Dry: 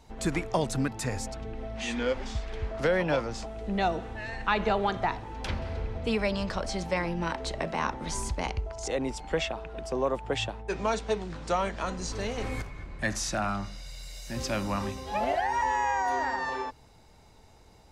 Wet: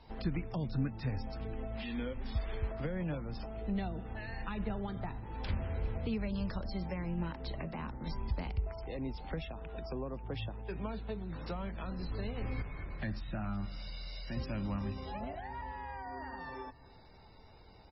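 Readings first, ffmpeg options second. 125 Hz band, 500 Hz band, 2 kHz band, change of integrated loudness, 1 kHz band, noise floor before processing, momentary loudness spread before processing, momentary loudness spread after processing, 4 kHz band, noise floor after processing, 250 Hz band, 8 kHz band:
-2.0 dB, -12.5 dB, -14.0 dB, -9.0 dB, -15.0 dB, -56 dBFS, 10 LU, 7 LU, -12.5 dB, -57 dBFS, -5.0 dB, under -40 dB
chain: -filter_complex "[0:a]acrossover=split=240[a][b];[b]acompressor=threshold=-42dB:ratio=6[c];[a][c]amix=inputs=2:normalize=0,asplit=2[d][e];[e]adelay=279,lowpass=f=4.5k:p=1,volume=-22dB,asplit=2[f][g];[g]adelay=279,lowpass=f=4.5k:p=1,volume=0.49,asplit=2[h][i];[i]adelay=279,lowpass=f=4.5k:p=1,volume=0.49[j];[d][f][h][j]amix=inputs=4:normalize=0,volume=-1dB" -ar 22050 -c:a libmp3lame -b:a 16k

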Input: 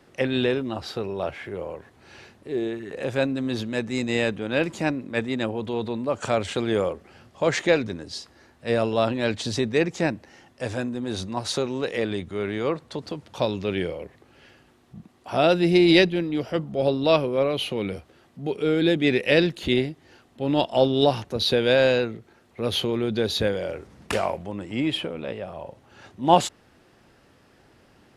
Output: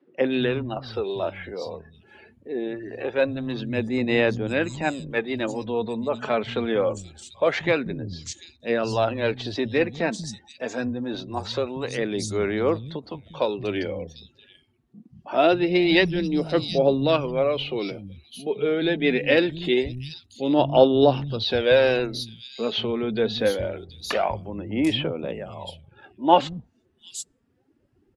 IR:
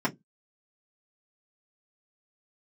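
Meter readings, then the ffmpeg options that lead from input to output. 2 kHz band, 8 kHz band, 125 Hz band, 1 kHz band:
+0.5 dB, -1.5 dB, -1.0 dB, +1.0 dB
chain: -filter_complex "[0:a]afftdn=nr=21:nf=-46,acrossover=split=180|4600[a][b][c];[a]adelay=190[d];[c]adelay=740[e];[d][b][e]amix=inputs=3:normalize=0,aphaser=in_gain=1:out_gain=1:delay=4.7:decay=0.4:speed=0.24:type=sinusoidal"

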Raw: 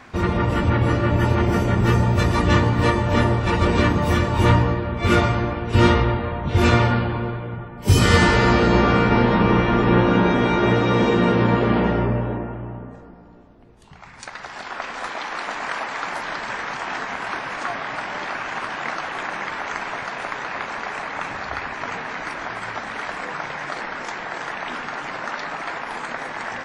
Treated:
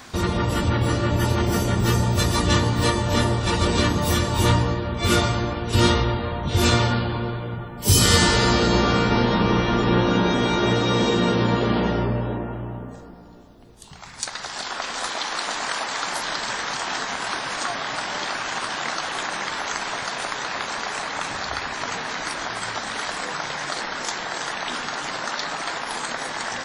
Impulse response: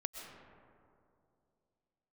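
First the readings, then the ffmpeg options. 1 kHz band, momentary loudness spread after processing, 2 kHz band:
-2.0 dB, 9 LU, -2.0 dB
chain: -filter_complex "[0:a]asplit=2[a][b];[b]acompressor=threshold=-27dB:ratio=6,volume=-1dB[c];[a][c]amix=inputs=2:normalize=0,aexciter=amount=3.6:drive=5.6:freq=3.3k,volume=-4.5dB"

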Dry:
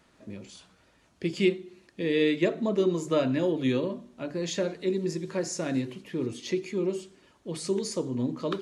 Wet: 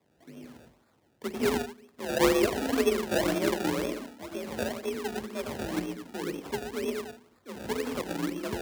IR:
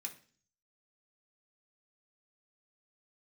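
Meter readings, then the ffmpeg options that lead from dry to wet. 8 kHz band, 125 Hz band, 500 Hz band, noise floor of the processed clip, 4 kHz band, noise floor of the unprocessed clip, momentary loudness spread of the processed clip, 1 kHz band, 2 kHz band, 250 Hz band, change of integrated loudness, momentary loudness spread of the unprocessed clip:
0.0 dB, -6.5 dB, -1.5 dB, -67 dBFS, +0.5 dB, -64 dBFS, 15 LU, +6.0 dB, +2.5 dB, -3.0 dB, -1.5 dB, 14 LU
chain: -filter_complex "[0:a]asplit=2[a][b];[1:a]atrim=start_sample=2205,adelay=91[c];[b][c]afir=irnorm=-1:irlink=0,volume=4dB[d];[a][d]amix=inputs=2:normalize=0,acrusher=samples=29:mix=1:aa=0.000001:lfo=1:lforange=29:lforate=2,aeval=exprs='0.299*(cos(1*acos(clip(val(0)/0.299,-1,1)))-cos(1*PI/2))+0.0188*(cos(2*acos(clip(val(0)/0.299,-1,1)))-cos(2*PI/2))+0.0299*(cos(3*acos(clip(val(0)/0.299,-1,1)))-cos(3*PI/2))+0.00841*(cos(7*acos(clip(val(0)/0.299,-1,1)))-cos(7*PI/2))':c=same,afreqshift=46,volume=-1.5dB"

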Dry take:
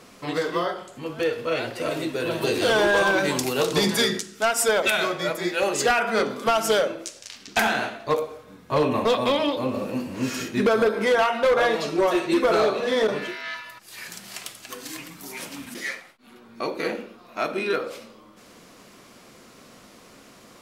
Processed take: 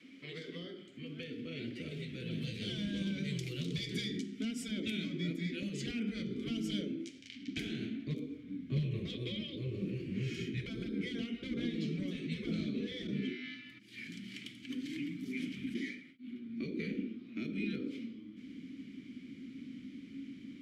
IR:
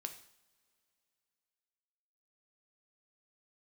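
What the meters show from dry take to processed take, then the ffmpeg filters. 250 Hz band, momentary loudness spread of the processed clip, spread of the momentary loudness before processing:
-7.5 dB, 11 LU, 16 LU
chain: -filter_complex "[0:a]acrossover=split=460|3800[a][b][c];[b]acompressor=threshold=-37dB:ratio=6[d];[a][d][c]amix=inputs=3:normalize=0,asplit=3[e][f][g];[e]bandpass=f=270:t=q:w=8,volume=0dB[h];[f]bandpass=f=2.29k:t=q:w=8,volume=-6dB[i];[g]bandpass=f=3.01k:t=q:w=8,volume=-9dB[j];[h][i][j]amix=inputs=3:normalize=0,adynamicequalizer=threshold=0.00141:dfrequency=410:dqfactor=3.6:tfrequency=410:tqfactor=3.6:attack=5:release=100:ratio=0.375:range=4:mode=boostabove:tftype=bell,afftfilt=real='re*lt(hypot(re,im),0.0562)':imag='im*lt(hypot(re,im),0.0562)':win_size=1024:overlap=0.75,asubboost=boost=10:cutoff=180,volume=4.5dB"

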